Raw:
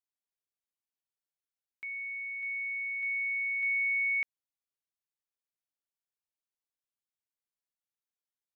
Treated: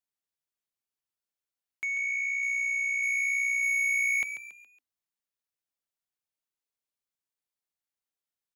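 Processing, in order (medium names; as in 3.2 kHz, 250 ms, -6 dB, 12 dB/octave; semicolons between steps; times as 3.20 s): dynamic bell 1.8 kHz, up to -4 dB, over -41 dBFS, Q 1.3; waveshaping leveller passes 2; frequency-shifting echo 139 ms, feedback 39%, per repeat +61 Hz, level -10 dB; trim +4 dB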